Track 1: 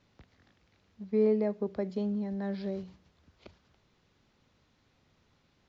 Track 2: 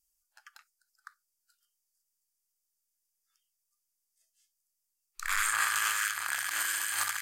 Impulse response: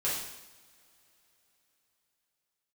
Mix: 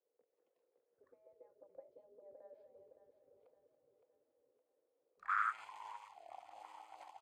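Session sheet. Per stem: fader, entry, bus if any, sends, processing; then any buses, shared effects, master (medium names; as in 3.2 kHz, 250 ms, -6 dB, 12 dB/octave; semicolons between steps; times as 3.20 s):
-5.5 dB, 0.00 s, no send, echo send -7.5 dB, bass shelf 360 Hz +10.5 dB; compression 2.5:1, threshold -35 dBFS, peak gain reduction 12.5 dB
+1.0 dB, 0.00 s, no send, echo send -23 dB, tilt EQ -3 dB/octave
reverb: none
echo: feedback delay 564 ms, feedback 50%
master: spectral gate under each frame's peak -15 dB weak; level rider gain up to 4 dB; auto-wah 480–1300 Hz, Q 7.6, up, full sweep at -28.5 dBFS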